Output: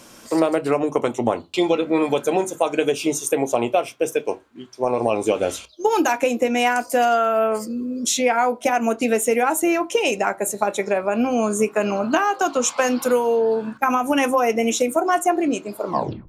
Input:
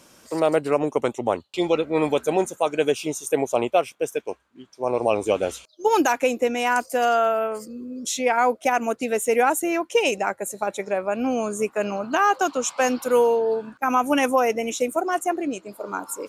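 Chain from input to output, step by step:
turntable brake at the end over 0.43 s
downward compressor, threshold −22 dBFS, peak gain reduction 8.5 dB
on a send: convolution reverb RT60 0.25 s, pre-delay 3 ms, DRR 9 dB
on the sum: level +6.5 dB

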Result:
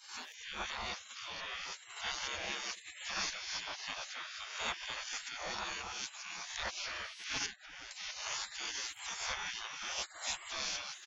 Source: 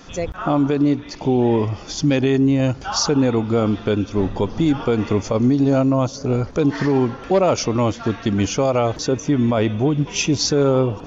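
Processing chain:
peak hold with a rise ahead of every peak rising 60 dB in 0.72 s
echo with shifted repeats 272 ms, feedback 60%, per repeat −120 Hz, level −16.5 dB
gate on every frequency bin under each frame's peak −30 dB weak
0:07.46–0:07.91: low-pass filter 1,200 Hz 6 dB per octave
level −2.5 dB

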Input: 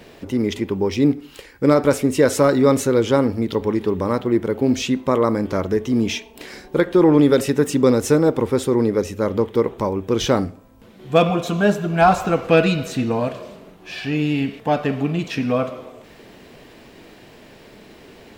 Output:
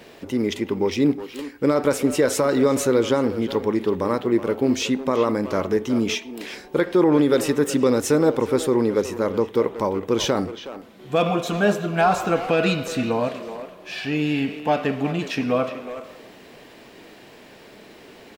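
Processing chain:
low-shelf EQ 140 Hz −10 dB
brickwall limiter −9 dBFS, peak gain reduction 6.5 dB
far-end echo of a speakerphone 370 ms, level −10 dB

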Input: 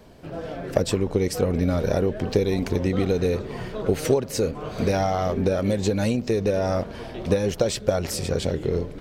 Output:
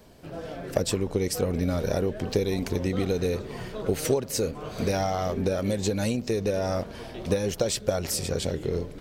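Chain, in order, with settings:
high-shelf EQ 4,800 Hz +8 dB
level −4 dB

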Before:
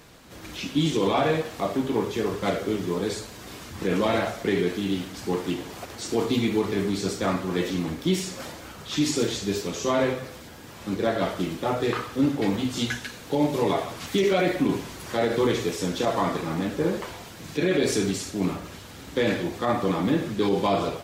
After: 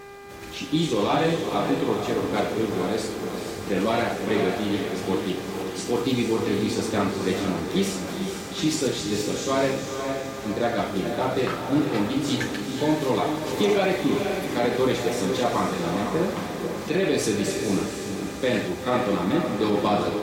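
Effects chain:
feedback delay with all-pass diffusion 494 ms, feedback 48%, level −5.5 dB
speed change +4%
hum with harmonics 400 Hz, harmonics 6, −43 dBFS −5 dB per octave

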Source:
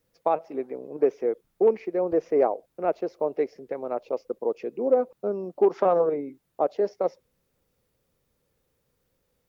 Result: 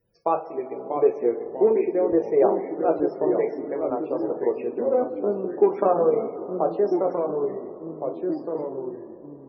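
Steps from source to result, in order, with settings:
coupled-rooms reverb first 0.26 s, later 3.8 s, from −19 dB, DRR 2 dB
delay with pitch and tempo change per echo 607 ms, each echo −2 semitones, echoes 3, each echo −6 dB
spectral peaks only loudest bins 64

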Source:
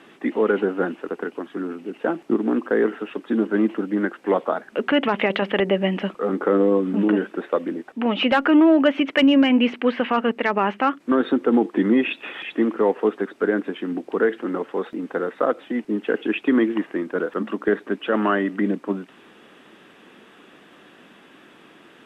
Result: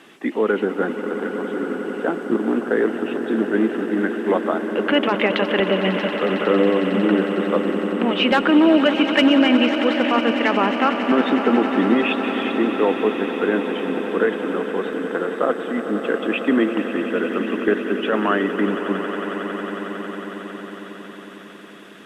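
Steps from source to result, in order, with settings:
high-shelf EQ 3,700 Hz +8.5 dB
echo that builds up and dies away 91 ms, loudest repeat 8, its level −14 dB

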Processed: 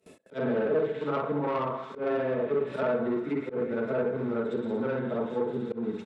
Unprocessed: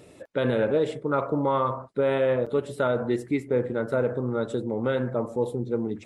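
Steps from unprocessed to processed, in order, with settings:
every overlapping window played backwards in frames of 139 ms
in parallel at −4 dB: dead-zone distortion −42.5 dBFS
on the sum: delay with a high-pass on its return 117 ms, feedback 84%, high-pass 2,200 Hz, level −7 dB
four-comb reverb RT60 1.1 s, combs from 32 ms, DRR 12.5 dB
treble cut that deepens with the level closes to 1,700 Hz, closed at −21 dBFS
soft clipping −19.5 dBFS, distortion −15 dB
high-pass filter 100 Hz
comb filter 4.6 ms, depth 41%
volume swells 115 ms
noise gate with hold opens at −43 dBFS
reversed playback
upward compression, threshold −35 dBFS
reversed playback
level −2 dB

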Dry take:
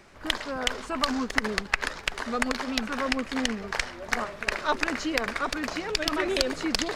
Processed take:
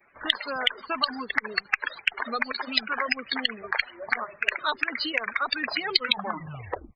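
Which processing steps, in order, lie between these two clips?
turntable brake at the end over 1.14 s
linear-phase brick-wall low-pass 5,100 Hz
low-shelf EQ 160 Hz +3.5 dB
far-end echo of a speakerphone 310 ms, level −27 dB
spectral peaks only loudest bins 64
reverb reduction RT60 1.8 s
downward compressor, threshold −31 dBFS, peak gain reduction 12.5 dB
downward expander −46 dBFS
spectral tilt +4.5 dB per octave
level +6.5 dB

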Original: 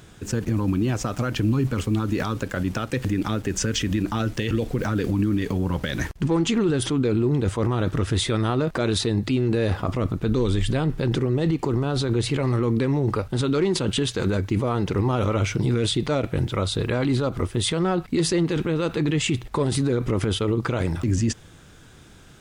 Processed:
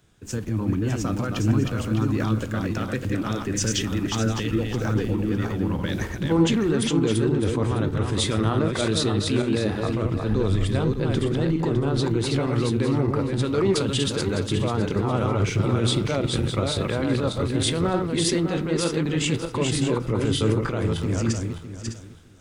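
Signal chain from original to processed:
feedback delay that plays each chunk backwards 304 ms, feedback 51%, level −3 dB
tuned comb filter 55 Hz, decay 0.21 s, mix 40%
multiband upward and downward expander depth 40%

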